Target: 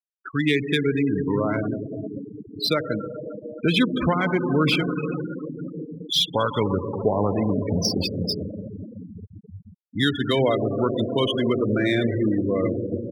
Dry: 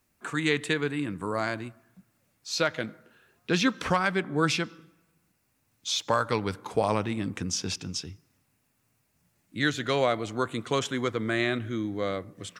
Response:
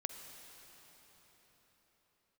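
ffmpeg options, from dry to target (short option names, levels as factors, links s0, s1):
-filter_complex "[0:a]acrossover=split=430|5900[s0][s1][s2];[s0]crystalizer=i=6:c=0[s3];[s1]equalizer=f=1300:w=0.54:g=-5[s4];[s2]acompressor=threshold=0.00112:ratio=16[s5];[s3][s4][s5]amix=inputs=3:normalize=0,asetrate=42336,aresample=44100[s6];[1:a]atrim=start_sample=2205,asetrate=30429,aresample=44100[s7];[s6][s7]afir=irnorm=-1:irlink=0,asplit=2[s8][s9];[s9]alimiter=limit=0.1:level=0:latency=1:release=112,volume=1.41[s10];[s8][s10]amix=inputs=2:normalize=0,afftfilt=real='re*gte(hypot(re,im),0.1)':imag='im*gte(hypot(re,im),0.1)':win_size=1024:overlap=0.75,aexciter=amount=1.2:drive=9.9:freq=2500"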